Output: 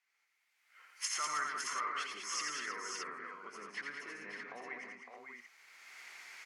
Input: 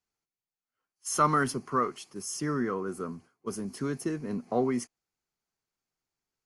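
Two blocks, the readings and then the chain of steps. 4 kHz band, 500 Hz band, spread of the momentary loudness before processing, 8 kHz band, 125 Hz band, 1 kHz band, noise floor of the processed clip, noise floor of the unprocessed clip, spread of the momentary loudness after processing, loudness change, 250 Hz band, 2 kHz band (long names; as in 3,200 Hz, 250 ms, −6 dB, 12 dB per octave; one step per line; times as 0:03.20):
+2.5 dB, −19.5 dB, 14 LU, −3.0 dB, −32.0 dB, −9.5 dB, −79 dBFS, below −85 dBFS, 16 LU, −9.0 dB, −25.0 dB, −0.5 dB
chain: camcorder AGC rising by 23 dB per second
spectral tilt −3 dB per octave
downward compressor 3 to 1, threshold −38 dBFS, peak gain reduction 15.5 dB
brickwall limiter −30.5 dBFS, peak gain reduction 9.5 dB
treble cut that deepens with the level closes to 2,900 Hz, closed at −35 dBFS
high-pass filter 1,400 Hz 12 dB per octave
parametric band 2,100 Hz +13.5 dB 0.58 octaves
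multi-tap delay 86/165/197/321/559/621 ms −4/−12.5/−6/−12/−6.5/−6.5 dB
level +7.5 dB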